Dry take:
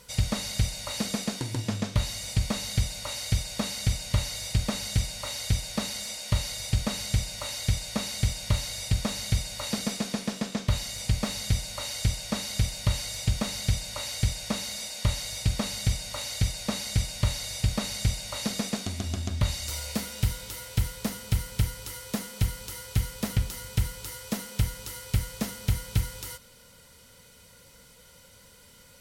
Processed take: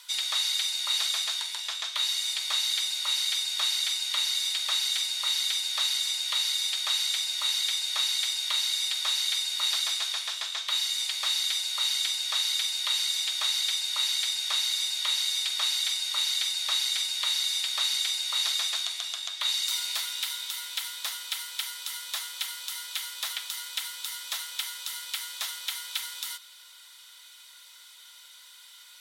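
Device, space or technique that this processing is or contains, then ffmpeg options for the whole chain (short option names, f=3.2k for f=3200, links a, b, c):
headphones lying on a table: -af "highpass=f=1k:w=0.5412,highpass=f=1k:w=1.3066,equalizer=f=3.6k:t=o:w=0.39:g=12,volume=2dB"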